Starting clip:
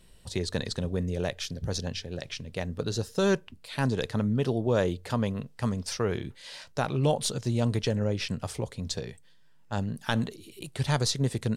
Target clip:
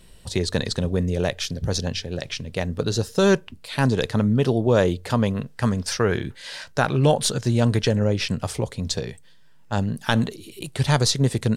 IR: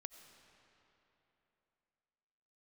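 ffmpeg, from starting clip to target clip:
-filter_complex "[0:a]asettb=1/sr,asplit=3[a][b][c];[a]atrim=end=5.364[d];[b]atrim=start=5.36:end=7.88,asetpts=PTS-STARTPTS,afade=t=in:d=0.004:c=qsin,afade=t=out:st=2.516:d=0.004:c=qsin,equalizer=f=1.6k:t=o:w=0.36:g=6.5[e];[c]atrim=start=7.876[f];[d][e]acrossfade=d=0.004:c1=hsin:c2=qsin[g];[g][f]acrossfade=d=0.004:c1=qsin:c2=hsin,volume=7dB"

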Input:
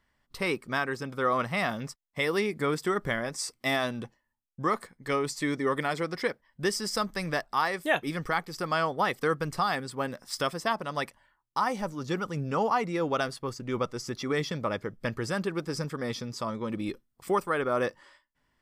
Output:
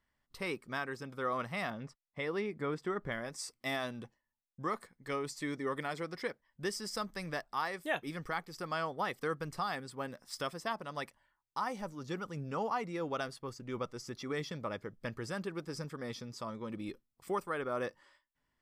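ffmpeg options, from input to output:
-filter_complex "[0:a]asettb=1/sr,asplit=3[a][b][c];[a]atrim=end=1.704[d];[b]atrim=start=1.7:end=3.12,asetpts=PTS-STARTPTS,afade=t=in:d=0.004:c=qsin,afade=t=out:st=1.416:d=0.004:c=qsin,aemphasis=mode=reproduction:type=75fm[e];[c]atrim=start=3.116[f];[d][e]acrossfade=d=0.004:c1=hsin:c2=qsin[g];[g][f]acrossfade=d=0.004:c1=qsin:c2=hsin,volume=-8.5dB"

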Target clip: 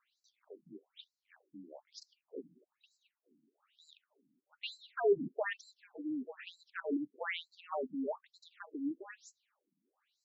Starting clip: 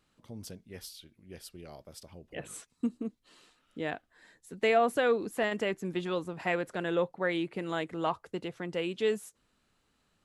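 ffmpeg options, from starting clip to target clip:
-af "afreqshift=-60,afftfilt=real='re*between(b*sr/1024,220*pow(5600/220,0.5+0.5*sin(2*PI*1.1*pts/sr))/1.41,220*pow(5600/220,0.5+0.5*sin(2*PI*1.1*pts/sr))*1.41)':imag='im*between(b*sr/1024,220*pow(5600/220,0.5+0.5*sin(2*PI*1.1*pts/sr))/1.41,220*pow(5600/220,0.5+0.5*sin(2*PI*1.1*pts/sr))*1.41)':win_size=1024:overlap=0.75"

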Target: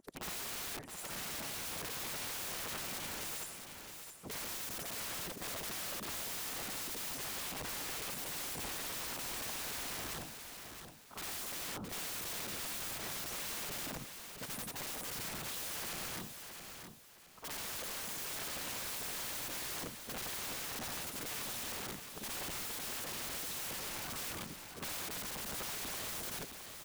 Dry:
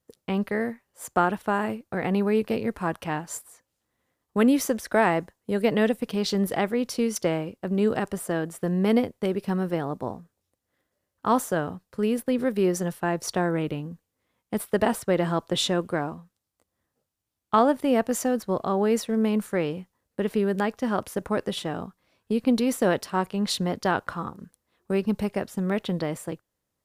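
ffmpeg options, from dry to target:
-af "afftfilt=real='re':imag='-im':win_size=8192:overlap=0.75,areverse,acompressor=threshold=-34dB:ratio=10,areverse,alimiter=level_in=8.5dB:limit=-24dB:level=0:latency=1:release=40,volume=-8.5dB,aeval=exprs='(mod(63.1*val(0)+1,2)-1)/63.1':c=same,afftfilt=real='hypot(re,im)*cos(2*PI*random(0))':imag='hypot(re,im)*sin(2*PI*random(1))':win_size=512:overlap=0.75,aeval=exprs='(mod(200*val(0)+1,2)-1)/200':c=same,aecho=1:1:667|1334|2001|2668:0.422|0.127|0.038|0.0114,volume=9dB"

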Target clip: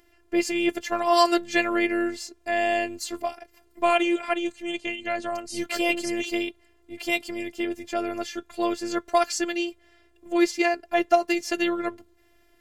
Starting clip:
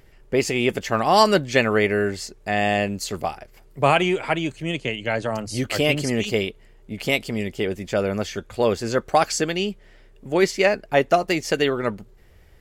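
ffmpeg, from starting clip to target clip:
-af "highpass=f=120:p=1,afftfilt=real='hypot(re,im)*cos(PI*b)':imag='0':win_size=512:overlap=0.75"

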